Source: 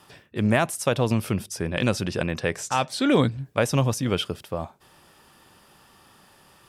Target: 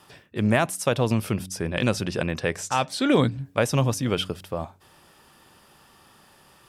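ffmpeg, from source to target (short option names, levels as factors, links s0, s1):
-af "bandreject=f=93.2:t=h:w=4,bandreject=f=186.4:t=h:w=4,bandreject=f=279.6:t=h:w=4"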